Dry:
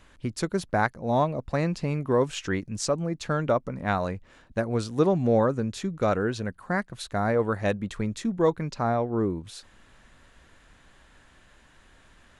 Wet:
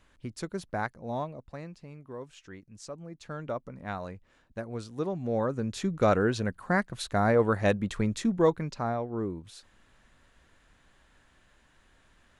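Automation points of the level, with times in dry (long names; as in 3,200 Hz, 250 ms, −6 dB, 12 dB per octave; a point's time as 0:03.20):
0:01.03 −8 dB
0:01.82 −18.5 dB
0:02.57 −18.5 dB
0:03.58 −10 dB
0:05.20 −10 dB
0:05.90 +1 dB
0:08.29 +1 dB
0:09.01 −6.5 dB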